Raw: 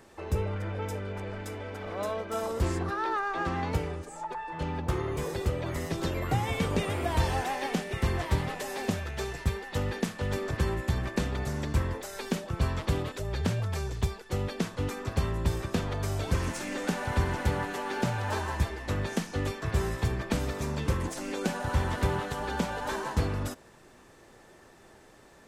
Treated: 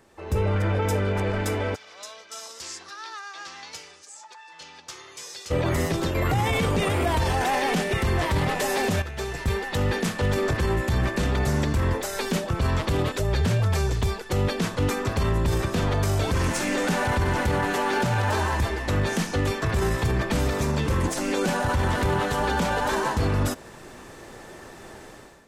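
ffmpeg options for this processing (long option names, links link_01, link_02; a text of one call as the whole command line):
ffmpeg -i in.wav -filter_complex "[0:a]asplit=3[link_01][link_02][link_03];[link_01]afade=type=out:start_time=1.74:duration=0.02[link_04];[link_02]bandpass=frequency=5600:width_type=q:width=2.1,afade=type=in:start_time=1.74:duration=0.02,afade=type=out:start_time=5.5:duration=0.02[link_05];[link_03]afade=type=in:start_time=5.5:duration=0.02[link_06];[link_04][link_05][link_06]amix=inputs=3:normalize=0,asplit=3[link_07][link_08][link_09];[link_07]atrim=end=6.152[link_10];[link_08]atrim=start=6.148:end=9.022,asetpts=PTS-STARTPTS,volume=10.5dB[link_11];[link_09]atrim=start=9.018[link_12];[link_10][link_11]acrossfade=duration=0.004:curve1=hsin:curve2=hsin[link_13];[link_13][link_12]acrossfade=duration=0.004:curve1=hsin:curve2=hsin,dynaudnorm=framelen=150:gausssize=5:maxgain=14.5dB,alimiter=limit=-13dB:level=0:latency=1:release=14,volume=-2.5dB" out.wav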